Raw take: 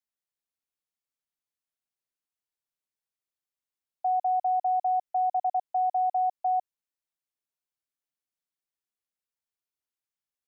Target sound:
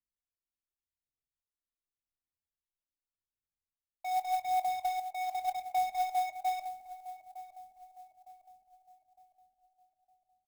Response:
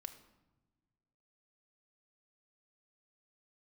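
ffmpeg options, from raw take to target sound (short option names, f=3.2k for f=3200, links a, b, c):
-filter_complex "[0:a]acontrast=89[a];[1:a]atrim=start_sample=2205,asetrate=52920,aresample=44100[b];[a][b]afir=irnorm=-1:irlink=0,adynamicsmooth=sensitivity=7:basefreq=930,aphaser=in_gain=1:out_gain=1:delay=3.2:decay=0.52:speed=0.87:type=sinusoidal,asplit=2[c][d];[d]adelay=23,volume=-12.5dB[e];[c][e]amix=inputs=2:normalize=0,asplit=2[f][g];[g]adelay=909,lowpass=f=850:p=1,volume=-11.5dB,asplit=2[h][i];[i]adelay=909,lowpass=f=850:p=1,volume=0.52,asplit=2[j][k];[k]adelay=909,lowpass=f=850:p=1,volume=0.52,asplit=2[l][m];[m]adelay=909,lowpass=f=850:p=1,volume=0.52,asplit=2[n][o];[o]adelay=909,lowpass=f=850:p=1,volume=0.52,asplit=2[p][q];[q]adelay=909,lowpass=f=850:p=1,volume=0.52[r];[f][h][j][l][n][p][r]amix=inputs=7:normalize=0,acrusher=bits=8:mode=log:mix=0:aa=0.000001,equalizer=f=520:w=0.5:g=-14"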